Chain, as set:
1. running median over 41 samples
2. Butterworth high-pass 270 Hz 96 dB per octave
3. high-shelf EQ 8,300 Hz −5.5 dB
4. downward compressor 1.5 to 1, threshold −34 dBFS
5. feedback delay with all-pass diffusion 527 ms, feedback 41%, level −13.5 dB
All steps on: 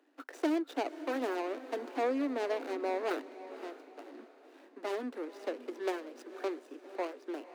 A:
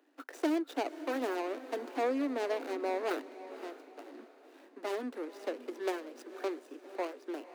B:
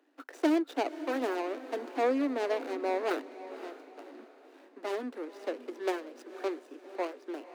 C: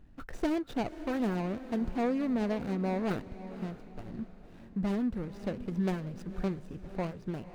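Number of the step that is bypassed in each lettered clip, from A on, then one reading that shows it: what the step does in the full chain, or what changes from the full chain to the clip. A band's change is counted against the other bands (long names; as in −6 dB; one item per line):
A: 3, 8 kHz band +2.0 dB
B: 4, change in integrated loudness +3.0 LU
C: 2, 250 Hz band +7.5 dB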